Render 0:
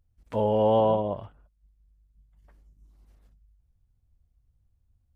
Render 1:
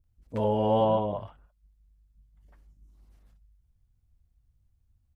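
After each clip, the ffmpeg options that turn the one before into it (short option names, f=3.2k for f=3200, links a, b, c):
-filter_complex "[0:a]acrossover=split=510[a][b];[b]adelay=40[c];[a][c]amix=inputs=2:normalize=0"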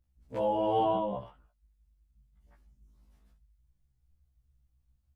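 -af "afftfilt=real='re*1.73*eq(mod(b,3),0)':imag='im*1.73*eq(mod(b,3),0)':win_size=2048:overlap=0.75"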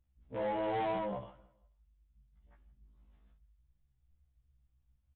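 -af "aresample=8000,asoftclip=type=tanh:threshold=-28dB,aresample=44100,aecho=1:1:162|324|486:0.0794|0.0294|0.0109,volume=-2dB"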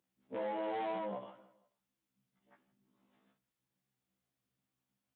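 -af "highpass=f=190:w=0.5412,highpass=f=190:w=1.3066,acompressor=threshold=-44dB:ratio=2,volume=3.5dB"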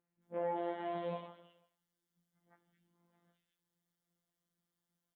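-filter_complex "[0:a]afftfilt=real='hypot(re,im)*cos(PI*b)':imag='0':win_size=1024:overlap=0.75,acrossover=split=2400[a][b];[b]adelay=220[c];[a][c]amix=inputs=2:normalize=0,volume=3dB"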